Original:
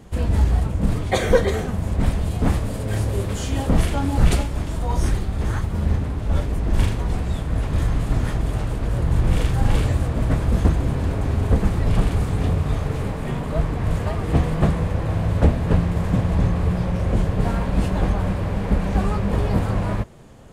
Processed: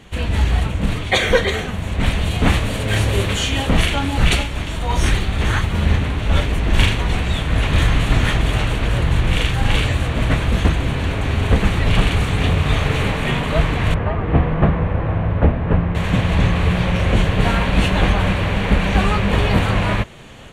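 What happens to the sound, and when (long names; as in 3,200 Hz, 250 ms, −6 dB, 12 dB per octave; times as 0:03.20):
0:13.94–0:15.95: low-pass filter 1,300 Hz
whole clip: parametric band 2,800 Hz +14 dB 1.9 octaves; notch filter 5,000 Hz, Q 6.6; automatic gain control gain up to 7.5 dB; level −1 dB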